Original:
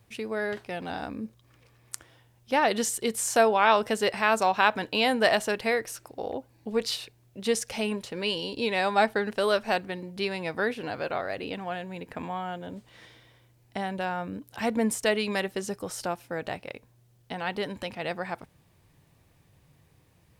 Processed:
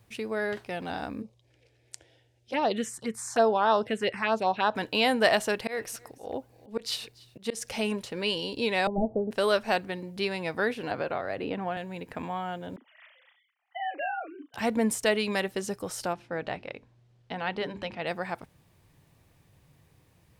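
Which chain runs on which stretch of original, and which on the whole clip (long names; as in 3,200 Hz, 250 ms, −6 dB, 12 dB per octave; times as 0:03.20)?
0:01.22–0:04.75: phaser swept by the level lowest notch 180 Hz, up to 2,300 Hz, full sweep at −18 dBFS + high-pass filter 68 Hz + high-frequency loss of the air 65 metres
0:05.46–0:08.00: volume swells 158 ms + single-tap delay 287 ms −23 dB
0:08.87–0:09.31: linear delta modulator 32 kbit/s, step −39 dBFS + Butterworth low-pass 700 Hz
0:10.91–0:11.77: high-shelf EQ 3,400 Hz −11.5 dB + multiband upward and downward compressor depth 100%
0:12.76–0:14.54: three sine waves on the formant tracks + high-pass filter 760 Hz 6 dB per octave + double-tracking delay 37 ms −7 dB
0:16.13–0:18.07: low-pass filter 4,400 Hz + mains-hum notches 50/100/150/200/250/300/350/400 Hz
whole clip: no processing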